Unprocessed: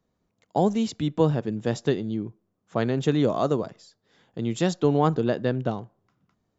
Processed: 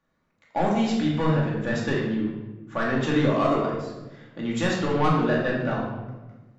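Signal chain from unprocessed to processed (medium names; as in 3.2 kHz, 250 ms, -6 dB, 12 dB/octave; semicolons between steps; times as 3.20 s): peaking EQ 1.6 kHz +13 dB 1.9 oct; saturation -13 dBFS, distortion -12 dB; simulated room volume 660 m³, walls mixed, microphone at 2.4 m; trim -6.5 dB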